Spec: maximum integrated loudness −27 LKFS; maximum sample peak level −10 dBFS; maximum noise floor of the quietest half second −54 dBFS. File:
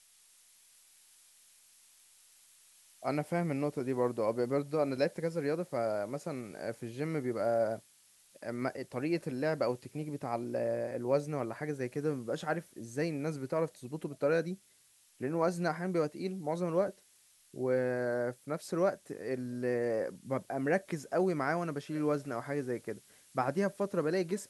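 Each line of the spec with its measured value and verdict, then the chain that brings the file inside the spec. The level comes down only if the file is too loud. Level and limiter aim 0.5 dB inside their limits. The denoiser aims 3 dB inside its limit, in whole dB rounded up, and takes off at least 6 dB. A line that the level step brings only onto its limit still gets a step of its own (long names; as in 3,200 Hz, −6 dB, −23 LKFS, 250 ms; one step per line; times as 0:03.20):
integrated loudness −34.5 LKFS: in spec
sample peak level −16.0 dBFS: in spec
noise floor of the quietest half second −66 dBFS: in spec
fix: no processing needed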